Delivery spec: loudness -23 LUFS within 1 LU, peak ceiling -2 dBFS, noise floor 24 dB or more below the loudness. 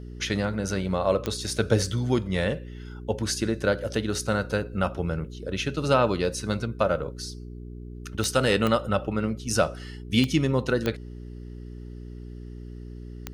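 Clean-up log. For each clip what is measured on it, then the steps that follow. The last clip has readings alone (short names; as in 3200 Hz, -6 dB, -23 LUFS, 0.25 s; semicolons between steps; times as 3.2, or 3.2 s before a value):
clicks 6; hum 60 Hz; harmonics up to 420 Hz; hum level -36 dBFS; loudness -26.5 LUFS; peak -6.5 dBFS; loudness target -23.0 LUFS
-> de-click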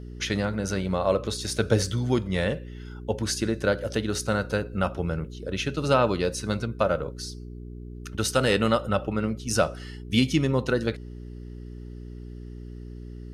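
clicks 0; hum 60 Hz; harmonics up to 420 Hz; hum level -36 dBFS
-> de-hum 60 Hz, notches 7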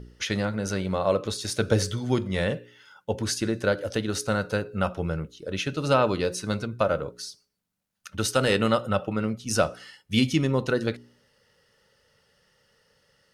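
hum none; loudness -26.5 LUFS; peak -7.0 dBFS; loudness target -23.0 LUFS
-> gain +3.5 dB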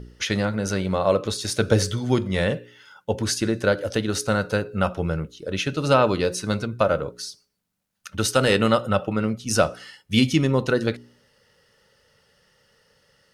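loudness -23.0 LUFS; peak -3.5 dBFS; noise floor -69 dBFS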